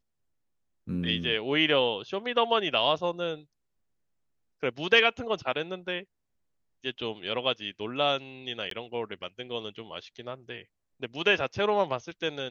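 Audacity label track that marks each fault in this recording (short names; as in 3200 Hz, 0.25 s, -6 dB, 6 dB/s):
8.700000	8.710000	gap 13 ms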